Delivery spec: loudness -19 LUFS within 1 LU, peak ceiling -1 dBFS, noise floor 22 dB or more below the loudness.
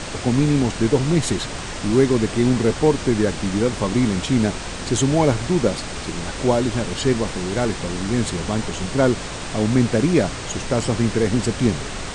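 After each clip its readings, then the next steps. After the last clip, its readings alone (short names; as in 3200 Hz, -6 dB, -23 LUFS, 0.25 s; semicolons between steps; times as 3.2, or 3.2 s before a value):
noise floor -30 dBFS; noise floor target -43 dBFS; loudness -20.5 LUFS; peak -4.5 dBFS; loudness target -19.0 LUFS
-> noise print and reduce 13 dB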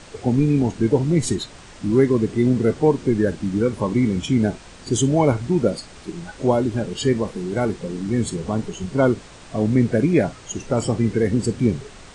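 noise floor -43 dBFS; loudness -21.0 LUFS; peak -5.0 dBFS; loudness target -19.0 LUFS
-> gain +2 dB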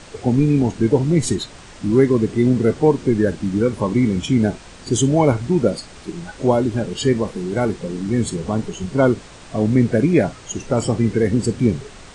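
loudness -19.0 LUFS; peak -3.0 dBFS; noise floor -41 dBFS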